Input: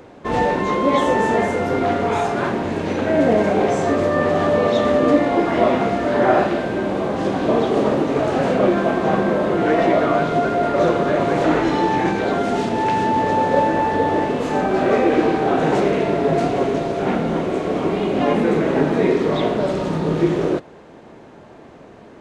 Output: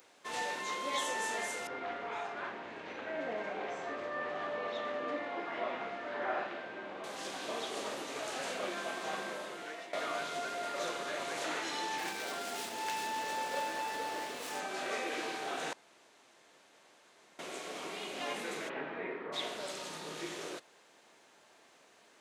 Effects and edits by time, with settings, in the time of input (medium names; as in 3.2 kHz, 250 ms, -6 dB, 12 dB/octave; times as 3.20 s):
1.67–7.04 s: low-pass 2.1 kHz
9.24–9.93 s: fade out linear, to -15 dB
11.98–14.60 s: sliding maximum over 5 samples
15.73–17.39 s: room tone
18.68–19.32 s: low-pass 3 kHz -> 1.8 kHz 24 dB/octave
whole clip: differentiator